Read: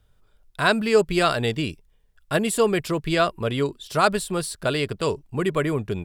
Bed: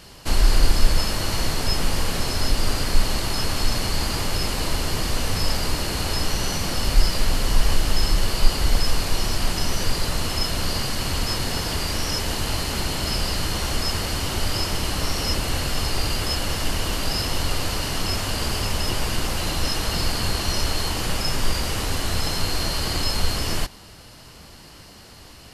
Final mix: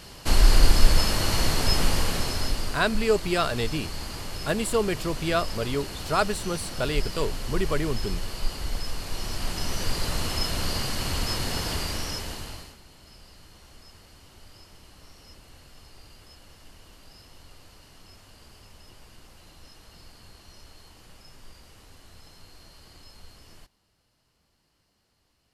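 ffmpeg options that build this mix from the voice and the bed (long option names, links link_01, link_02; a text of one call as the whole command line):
ffmpeg -i stem1.wav -i stem2.wav -filter_complex "[0:a]adelay=2150,volume=-4.5dB[link_01];[1:a]volume=7.5dB,afade=type=out:start_time=1.83:duration=0.97:silence=0.281838,afade=type=in:start_time=8.99:duration=1.16:silence=0.421697,afade=type=out:start_time=11.72:duration=1.05:silence=0.0707946[link_02];[link_01][link_02]amix=inputs=2:normalize=0" out.wav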